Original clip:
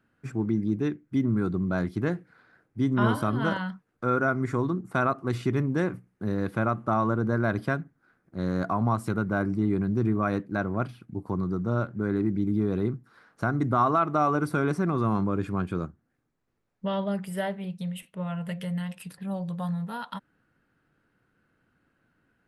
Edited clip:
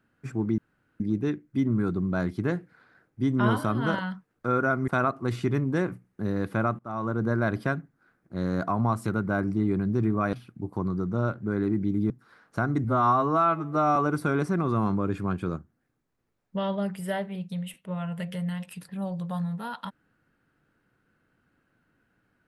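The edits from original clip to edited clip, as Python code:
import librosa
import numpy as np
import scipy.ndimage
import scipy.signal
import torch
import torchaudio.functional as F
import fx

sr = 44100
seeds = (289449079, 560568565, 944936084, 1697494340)

y = fx.edit(x, sr, fx.insert_room_tone(at_s=0.58, length_s=0.42),
    fx.cut(start_s=4.46, length_s=0.44),
    fx.fade_in_from(start_s=6.81, length_s=0.45, floor_db=-23.0),
    fx.cut(start_s=10.35, length_s=0.51),
    fx.cut(start_s=12.63, length_s=0.32),
    fx.stretch_span(start_s=13.69, length_s=0.56, factor=2.0), tone=tone)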